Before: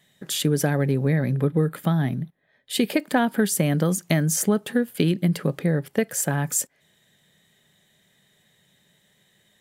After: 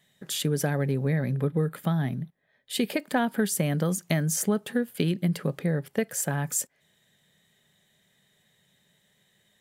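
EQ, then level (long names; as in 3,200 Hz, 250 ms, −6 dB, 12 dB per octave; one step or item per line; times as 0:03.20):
parametric band 310 Hz −4 dB 0.28 octaves
−4.0 dB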